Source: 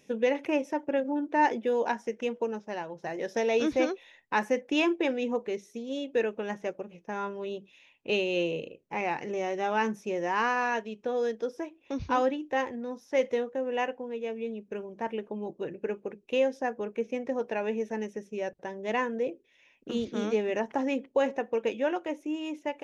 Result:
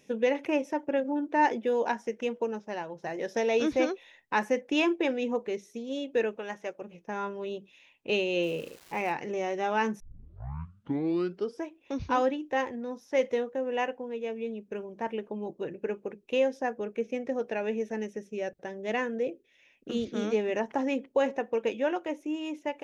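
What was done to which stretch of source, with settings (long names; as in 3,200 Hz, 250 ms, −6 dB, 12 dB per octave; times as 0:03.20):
0:06.36–0:06.82: low-shelf EQ 320 Hz −11.5 dB
0:08.42–0:09.11: surface crackle 590 per second −41 dBFS
0:10.00: tape start 1.62 s
0:16.75–0:20.30: parametric band 970 Hz −7.5 dB 0.3 octaves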